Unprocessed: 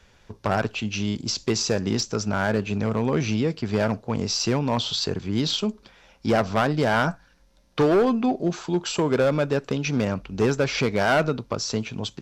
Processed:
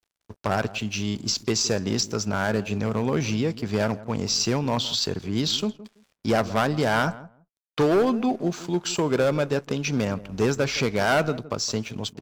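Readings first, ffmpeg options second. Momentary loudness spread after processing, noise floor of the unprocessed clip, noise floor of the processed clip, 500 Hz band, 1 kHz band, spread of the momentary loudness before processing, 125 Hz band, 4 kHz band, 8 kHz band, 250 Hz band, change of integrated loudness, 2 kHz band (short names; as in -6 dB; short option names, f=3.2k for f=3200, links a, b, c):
6 LU, -58 dBFS, -83 dBFS, -1.0 dB, -1.0 dB, 6 LU, -1.5 dB, +1.0 dB, +2.5 dB, -1.5 dB, -0.5 dB, -1.0 dB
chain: -filter_complex "[0:a]crystalizer=i=1:c=0,aeval=exprs='sgn(val(0))*max(abs(val(0))-0.00398,0)':c=same,asplit=2[a][b];[b]adelay=166,lowpass=f=930:p=1,volume=-16dB,asplit=2[c][d];[d]adelay=166,lowpass=f=930:p=1,volume=0.17[e];[a][c][e]amix=inputs=3:normalize=0,volume=-1dB"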